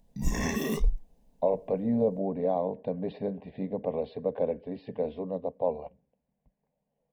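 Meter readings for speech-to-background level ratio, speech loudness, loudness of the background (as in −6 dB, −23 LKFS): 0.0 dB, −31.5 LKFS, −31.5 LKFS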